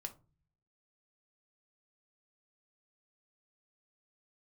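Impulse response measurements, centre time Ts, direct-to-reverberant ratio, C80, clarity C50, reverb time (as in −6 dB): 6 ms, 5.0 dB, 23.0 dB, 16.0 dB, 0.35 s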